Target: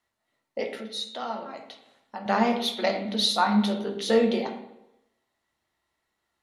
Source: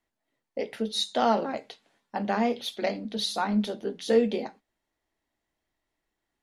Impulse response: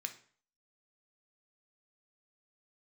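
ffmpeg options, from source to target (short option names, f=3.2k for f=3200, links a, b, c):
-filter_complex "[0:a]asettb=1/sr,asplit=3[a][b][c];[a]atrim=end=0.714[d];[b]atrim=start=0.71:end=2.26,asetpts=PTS-STARTPTS,afade=t=in:d=0.004:c=qsin,afade=t=out:st=1.546:d=0.004:c=qsin,acompressor=threshold=-46dB:ratio=2[e];[c]atrim=start=2.256[f];[d][e]acrossfade=d=0.004:c1=hsin:c2=qsin[g];[g][f]acrossfade=d=0.004:c1=qsin:c2=hsin[h];[1:a]atrim=start_sample=2205,asetrate=24255,aresample=44100[i];[h][i]afir=irnorm=-1:irlink=0,volume=3dB"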